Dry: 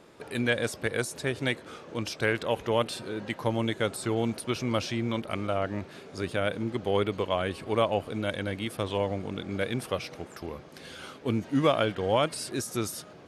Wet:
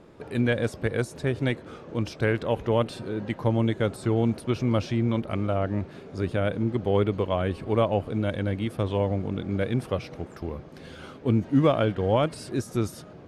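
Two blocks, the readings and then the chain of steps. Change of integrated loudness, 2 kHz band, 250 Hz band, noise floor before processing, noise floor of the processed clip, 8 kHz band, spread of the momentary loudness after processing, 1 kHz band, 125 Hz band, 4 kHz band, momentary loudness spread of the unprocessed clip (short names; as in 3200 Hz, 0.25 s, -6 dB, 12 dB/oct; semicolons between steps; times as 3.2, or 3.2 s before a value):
+3.0 dB, -2.0 dB, +5.0 dB, -49 dBFS, -46 dBFS, n/a, 9 LU, 0.0 dB, +7.5 dB, -4.5 dB, 10 LU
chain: tilt -2.5 dB/oct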